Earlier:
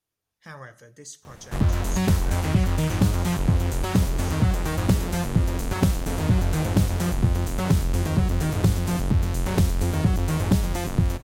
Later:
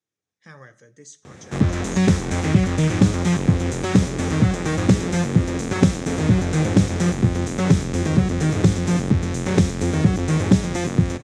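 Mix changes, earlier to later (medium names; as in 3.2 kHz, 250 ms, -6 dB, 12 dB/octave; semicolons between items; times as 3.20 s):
background +7.5 dB; master: add cabinet simulation 130–7500 Hz, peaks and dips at 660 Hz -6 dB, 960 Hz -8 dB, 1.4 kHz -4 dB, 2.9 kHz -6 dB, 4.5 kHz -7 dB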